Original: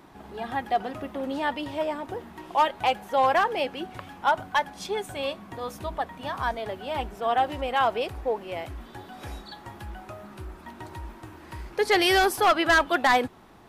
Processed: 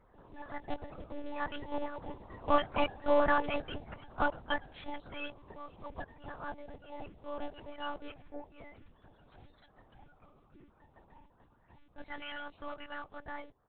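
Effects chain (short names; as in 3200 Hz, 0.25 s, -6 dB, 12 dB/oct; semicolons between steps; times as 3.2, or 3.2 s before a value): bin magnitudes rounded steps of 30 dB; Doppler pass-by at 3, 12 m/s, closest 17 m; harmoniser -12 st -5 dB, -4 st -17 dB; monotone LPC vocoder at 8 kHz 290 Hz; gain -5.5 dB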